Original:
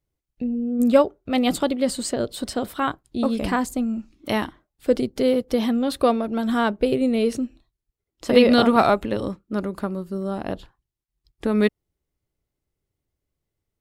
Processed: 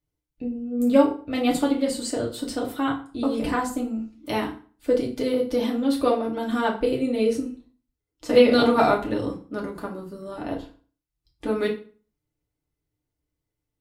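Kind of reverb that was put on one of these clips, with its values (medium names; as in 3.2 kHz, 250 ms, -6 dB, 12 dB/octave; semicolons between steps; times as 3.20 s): FDN reverb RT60 0.41 s, low-frequency decay 1.1×, high-frequency decay 0.8×, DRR -2.5 dB; trim -6.5 dB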